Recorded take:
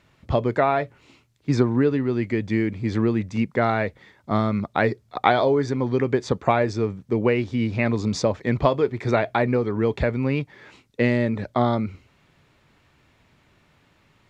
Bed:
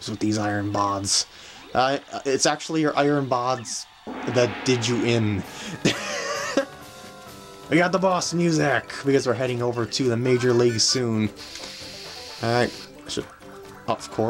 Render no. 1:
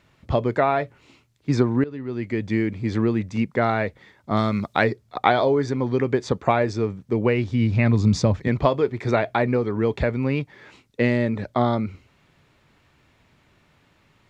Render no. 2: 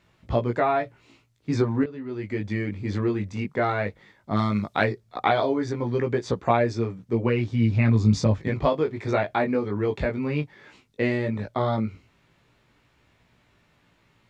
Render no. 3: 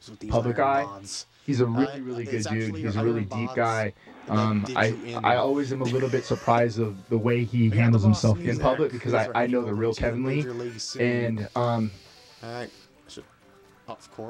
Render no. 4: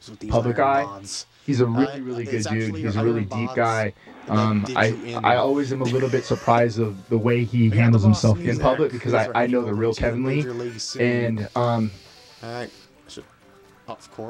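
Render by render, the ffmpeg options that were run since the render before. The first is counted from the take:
-filter_complex "[0:a]asettb=1/sr,asplit=3[a][b][c];[a]atrim=end=4.374[d];[b]atrim=start=4.37:end=4.84,asetpts=PTS-STARTPTS,afade=t=in:d=0.004:c=qsin,afade=t=out:st=0.466:d=0.004:c=qsin,highshelf=f=2.7k:g=10[e];[c]atrim=start=4.836[f];[d][e]acrossfade=d=0.004:c1=hsin:c2=qsin[g];[g][f]acrossfade=d=0.004:c1=qsin:c2=hsin,asettb=1/sr,asplit=3[h][i][j];[h]atrim=end=7.104[k];[i]atrim=start=7.1:end=8.48,asetpts=PTS-STARTPTS,afade=t=in:d=0.004:c=qsin,afade=t=out:st=1.376:d=0.004:c=qsin,asubboost=boost=8.5:cutoff=220[l];[j]atrim=start=8.476[m];[k][l]acrossfade=d=0.004:c1=hsin:c2=qsin[n];[n][m]acrossfade=d=0.004:c1=qsin:c2=hsin,asplit=2[o][p];[o]atrim=end=1.84,asetpts=PTS-STARTPTS,afade=t=out:st=1.836:d=0.004:c=hsin:silence=0.125893[q];[p]atrim=start=1.84,asetpts=PTS-STARTPTS,afade=t=in:d=0.62:silence=0.125893[r];[q][r]concat=n=2:v=0:a=1"
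-af "flanger=delay=17:depth=3:speed=0.15"
-filter_complex "[1:a]volume=-14dB[a];[0:a][a]amix=inputs=2:normalize=0"
-af "volume=3.5dB"

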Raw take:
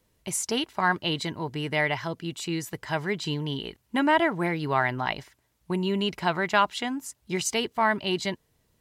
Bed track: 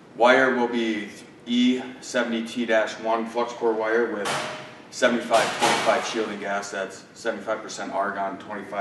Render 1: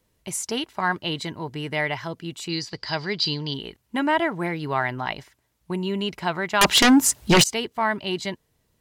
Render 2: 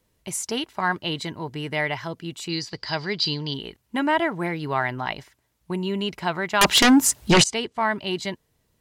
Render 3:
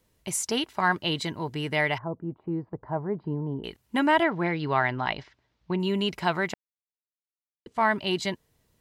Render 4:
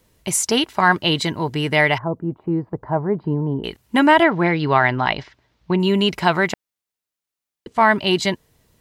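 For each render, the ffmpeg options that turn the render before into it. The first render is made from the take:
-filter_complex "[0:a]asettb=1/sr,asplit=3[a][b][c];[a]atrim=end=2.494[d];[b]atrim=start=2.49:end=3.54,asetpts=PTS-STARTPTS,afade=t=in:d=0.004:c=qsin,afade=t=out:st=1.046:d=0.004:c=qsin,lowpass=f=4.7k:t=q:w=13[e];[c]atrim=start=3.536[f];[d][e]acrossfade=d=0.004:c1=hsin:c2=qsin[g];[g][f]acrossfade=d=0.004:c1=qsin:c2=hsin,asettb=1/sr,asplit=3[h][i][j];[h]atrim=end=6.614[k];[i]atrim=start=6.61:end=7.44,asetpts=PTS-STARTPTS,afade=t=in:d=0.004:c=qsin,afade=t=out:st=0.826:d=0.004:c=qsin,aeval=exprs='0.299*sin(PI/2*6.31*val(0)/0.299)':c=same[l];[j]atrim=start=7.436[m];[k][l]acrossfade=d=0.004:c1=hsin:c2=qsin[n];[n][m]acrossfade=d=0.004:c1=qsin:c2=hsin"
-filter_complex "[0:a]asettb=1/sr,asplit=3[a][b][c];[a]atrim=end=7.314[d];[b]atrim=start=7.31:end=7.96,asetpts=PTS-STARTPTS,afade=t=in:d=0.004:c=qsin,afade=t=out:st=0.646:d=0.004:c=qsin,lowpass=f=9.9k:w=0.5412,lowpass=f=9.9k:w=1.3066[e];[c]atrim=start=7.956[f];[d][e]acrossfade=d=0.004:c1=hsin:c2=qsin[g];[g][f]acrossfade=d=0.004:c1=qsin:c2=hsin"
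-filter_complex "[0:a]asettb=1/sr,asplit=3[a][b][c];[a]atrim=end=1.984[d];[b]atrim=start=1.98:end=3.64,asetpts=PTS-STARTPTS,afade=t=in:d=0.004:c=qsin,afade=t=out:st=1.656:d=0.004:c=qsin,lowpass=f=1k:w=0.5412,lowpass=f=1k:w=1.3066[e];[c]atrim=start=3.636[f];[d][e]acrossfade=d=0.004:c1=hsin:c2=qsin[g];[g][f]acrossfade=d=0.004:c1=qsin:c2=hsin,asettb=1/sr,asplit=3[h][i][j];[h]atrim=end=4.234[k];[i]atrim=start=4.23:end=5.8,asetpts=PTS-STARTPTS,afade=t=in:d=0.004:c=qsin,afade=t=out:st=1.566:d=0.004:c=qsin,lowpass=f=5k:w=0.5412,lowpass=f=5k:w=1.3066[l];[j]atrim=start=5.796[m];[k][l]acrossfade=d=0.004:c1=hsin:c2=qsin[n];[n][m]acrossfade=d=0.004:c1=qsin:c2=hsin,asplit=3[o][p][q];[o]atrim=end=6.54,asetpts=PTS-STARTPTS,afade=t=out:st=6.536:d=0.004:c=hsin[r];[p]atrim=start=6.54:end=7.66,asetpts=PTS-STARTPTS,volume=0[s];[q]atrim=start=7.66,asetpts=PTS-STARTPTS,afade=t=in:d=0.004:c=hsin[t];[r][s][t]concat=n=3:v=0:a=1"
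-af "volume=9dB,alimiter=limit=-3dB:level=0:latency=1"

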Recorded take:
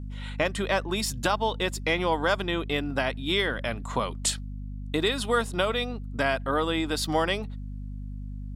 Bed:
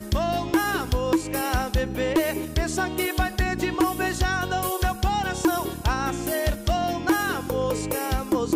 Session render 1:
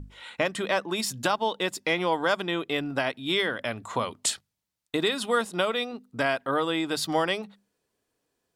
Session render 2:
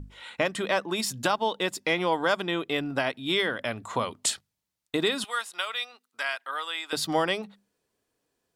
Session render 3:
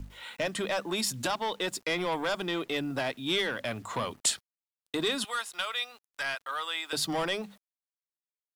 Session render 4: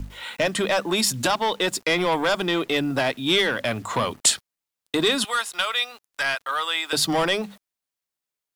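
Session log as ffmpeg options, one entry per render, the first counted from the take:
-af "bandreject=f=50:t=h:w=6,bandreject=f=100:t=h:w=6,bandreject=f=150:t=h:w=6,bandreject=f=200:t=h:w=6,bandreject=f=250:t=h:w=6"
-filter_complex "[0:a]asettb=1/sr,asplit=3[a][b][c];[a]atrim=end=5.244[d];[b]atrim=start=5.24:end=6.93,asetpts=PTS-STARTPTS,afade=t=in:d=0.004:c=qsin,afade=t=out:st=1.686:d=0.004:c=qsin,highpass=1.3k[e];[c]atrim=start=6.926[f];[d][e]acrossfade=d=0.004:c1=hsin:c2=qsin[g];[g][f]acrossfade=d=0.004:c1=qsin:c2=hsin"
-filter_complex "[0:a]acrossover=split=120|3300[a][b][c];[b]asoftclip=type=tanh:threshold=-26dB[d];[a][d][c]amix=inputs=3:normalize=0,acrusher=bits=9:mix=0:aa=0.000001"
-af "volume=8.5dB"

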